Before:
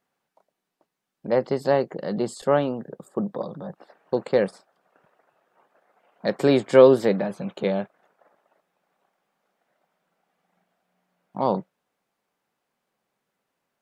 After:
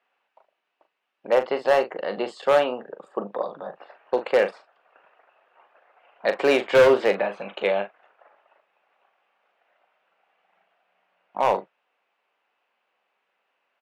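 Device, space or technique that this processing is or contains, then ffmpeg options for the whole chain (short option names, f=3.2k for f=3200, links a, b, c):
megaphone: -filter_complex "[0:a]highpass=580,lowpass=2.7k,equalizer=f=2.7k:t=o:w=0.43:g=9,asoftclip=type=hard:threshold=-17.5dB,asplit=2[a][b];[b]adelay=40,volume=-10dB[c];[a][c]amix=inputs=2:normalize=0,volume=6dB"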